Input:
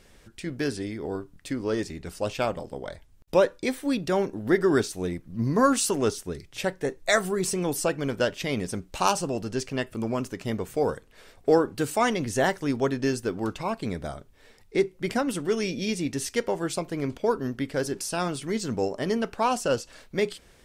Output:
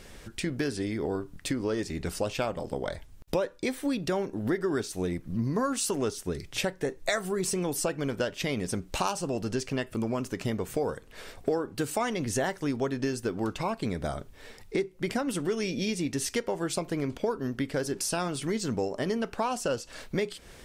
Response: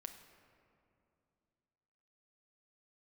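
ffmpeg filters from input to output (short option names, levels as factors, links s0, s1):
-af "acompressor=threshold=0.0178:ratio=4,volume=2.24"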